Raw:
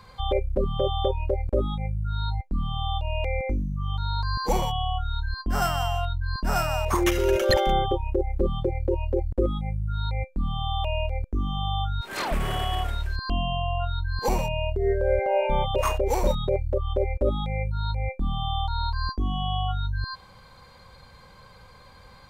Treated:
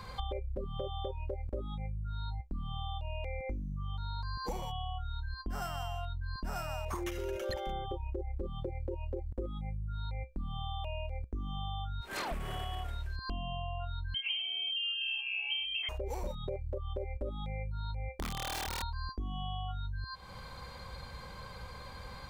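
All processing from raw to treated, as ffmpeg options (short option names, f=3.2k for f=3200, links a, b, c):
-filter_complex "[0:a]asettb=1/sr,asplit=3[a][b][c];[a]atrim=end=14.144[d];[b]atrim=start=14.14:end=15.89,asetpts=PTS-STARTPTS,afade=t=in:d=0.004:c=qsin,afade=t=out:st=1.746:d=0.004:c=qsin,tiltshelf=f=730:g=6.5,aecho=1:1:5.5:0.72,atrim=end_sample=77175,lowpass=f=2.7k:t=q:w=0.5098,lowpass=f=2.7k:t=q:w=0.6013,lowpass=f=2.7k:t=q:w=0.9,lowpass=f=2.7k:t=q:w=2.563,afreqshift=-3200[e];[c]atrim=start=15.886[f];[d][e]acrossfade=d=0.004:c1=hsin:c2=qsin[g];[g][f]acrossfade=d=0.004:c1=qsin:c2=hsin,asettb=1/sr,asplit=3[h][i][j];[h]atrim=end=18.094[k];[i]atrim=start=18.09:end=18.83,asetpts=PTS-STARTPTS,afade=t=in:d=0.004:c=qsin,afade=t=out:st=0.736:d=0.004:c=qsin,lowshelf=f=89:g=-5,aeval=exprs='(mod(13.3*val(0)+1,2)-1)/13.3':c=same[l];[j]atrim=start=18.826[m];[k][l]acrossfade=d=0.004:c1=hsin:c2=qsin[n];[n][m]acrossfade=d=0.004:c1=qsin:c2=hsin,equalizer=f=62:w=3.7:g=6.5,acompressor=threshold=-39dB:ratio=6,volume=3dB"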